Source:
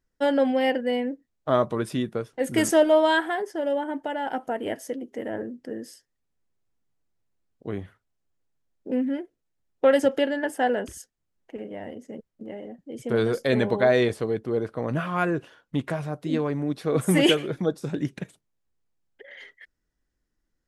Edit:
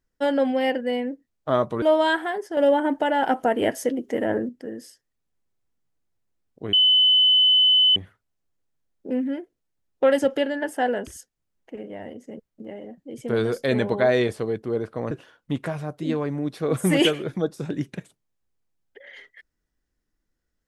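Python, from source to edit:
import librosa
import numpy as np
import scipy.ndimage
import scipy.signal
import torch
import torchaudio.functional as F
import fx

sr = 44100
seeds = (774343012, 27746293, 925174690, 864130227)

y = fx.edit(x, sr, fx.cut(start_s=1.82, length_s=1.04),
    fx.clip_gain(start_s=3.61, length_s=1.92, db=7.5),
    fx.insert_tone(at_s=7.77, length_s=1.23, hz=3020.0, db=-13.5),
    fx.cut(start_s=14.92, length_s=0.43), tone=tone)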